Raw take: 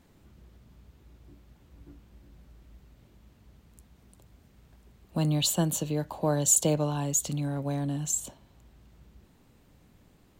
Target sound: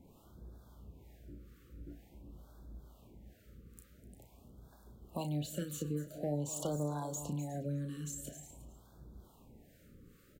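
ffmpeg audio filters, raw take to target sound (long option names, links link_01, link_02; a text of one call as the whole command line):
ffmpeg -i in.wav -filter_complex "[0:a]asoftclip=type=hard:threshold=-19dB,equalizer=frequency=3900:width_type=o:width=2.9:gain=-9.5,acrossover=split=570[link_01][link_02];[link_01]aeval=exprs='val(0)*(1-0.7/2+0.7/2*cos(2*PI*2.2*n/s))':channel_layout=same[link_03];[link_02]aeval=exprs='val(0)*(1-0.7/2-0.7/2*cos(2*PI*2.2*n/s))':channel_layout=same[link_04];[link_03][link_04]amix=inputs=2:normalize=0,lowshelf=frequency=320:gain=-7,asplit=2[link_05][link_06];[link_06]adelay=34,volume=-8.5dB[link_07];[link_05][link_07]amix=inputs=2:normalize=0,asplit=2[link_08][link_09];[link_09]aecho=0:1:250:0.133[link_10];[link_08][link_10]amix=inputs=2:normalize=0,acrossover=split=5200[link_11][link_12];[link_12]acompressor=threshold=-46dB:ratio=4:attack=1:release=60[link_13];[link_11][link_13]amix=inputs=2:normalize=0,asplit=2[link_14][link_15];[link_15]aecho=0:1:360:0.112[link_16];[link_14][link_16]amix=inputs=2:normalize=0,acompressor=threshold=-50dB:ratio=2,afftfilt=real='re*(1-between(b*sr/1024,770*pow(2400/770,0.5+0.5*sin(2*PI*0.47*pts/sr))/1.41,770*pow(2400/770,0.5+0.5*sin(2*PI*0.47*pts/sr))*1.41))':imag='im*(1-between(b*sr/1024,770*pow(2400/770,0.5+0.5*sin(2*PI*0.47*pts/sr))/1.41,770*pow(2400/770,0.5+0.5*sin(2*PI*0.47*pts/sr))*1.41))':win_size=1024:overlap=0.75,volume=8dB" out.wav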